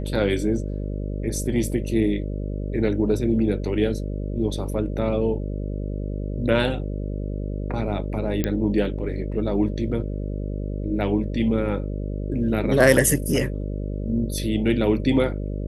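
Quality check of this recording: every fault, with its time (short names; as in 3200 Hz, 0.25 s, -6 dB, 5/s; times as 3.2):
buzz 50 Hz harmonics 12 -28 dBFS
8.44 pop -9 dBFS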